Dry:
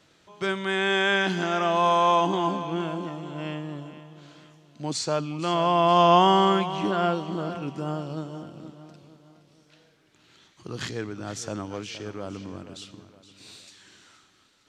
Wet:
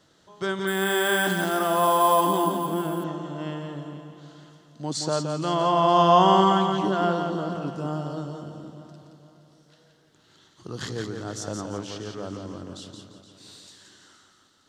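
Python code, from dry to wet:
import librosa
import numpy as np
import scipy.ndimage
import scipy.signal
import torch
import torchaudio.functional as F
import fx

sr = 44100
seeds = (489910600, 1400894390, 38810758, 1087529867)

y = fx.peak_eq(x, sr, hz=2400.0, db=-13.0, octaves=0.32)
y = fx.echo_feedback(y, sr, ms=172, feedback_pct=33, wet_db=-5.5)
y = fx.resample_bad(y, sr, factor=4, down='none', up='hold', at=(0.67, 3.04))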